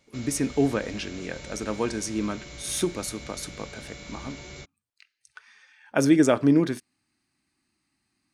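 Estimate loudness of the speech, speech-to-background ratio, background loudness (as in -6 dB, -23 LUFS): -26.0 LUFS, 16.0 dB, -42.0 LUFS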